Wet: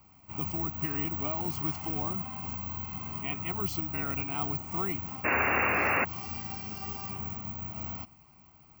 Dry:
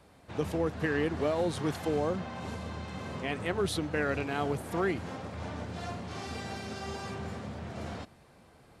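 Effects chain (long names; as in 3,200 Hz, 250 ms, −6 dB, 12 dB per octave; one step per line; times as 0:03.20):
phaser with its sweep stopped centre 2,500 Hz, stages 8
bad sample-rate conversion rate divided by 2×, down none, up zero stuff
sound drawn into the spectrogram noise, 0:05.24–0:06.05, 210–2,800 Hz −27 dBFS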